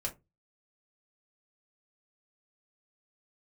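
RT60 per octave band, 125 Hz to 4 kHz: 0.40, 0.30, 0.25, 0.20, 0.15, 0.10 s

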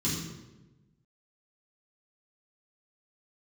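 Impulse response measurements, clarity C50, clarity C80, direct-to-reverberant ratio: 2.0 dB, 4.0 dB, -9.5 dB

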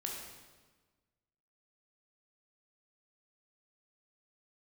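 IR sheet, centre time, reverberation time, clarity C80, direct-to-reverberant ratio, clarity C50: 63 ms, 1.3 s, 4.0 dB, -1.0 dB, 2.0 dB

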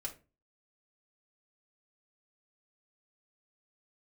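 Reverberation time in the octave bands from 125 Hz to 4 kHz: 0.50, 0.40, 0.35, 0.25, 0.25, 0.20 s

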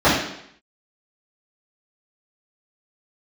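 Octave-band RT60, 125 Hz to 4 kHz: 0.65, 0.70, 0.70, 0.70, 0.75, 0.70 s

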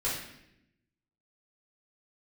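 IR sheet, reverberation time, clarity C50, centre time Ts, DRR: 0.80 s, 2.0 dB, 53 ms, -9.0 dB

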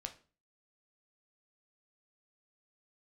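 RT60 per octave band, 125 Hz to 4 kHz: 0.50, 0.45, 0.40, 0.35, 0.35, 0.30 s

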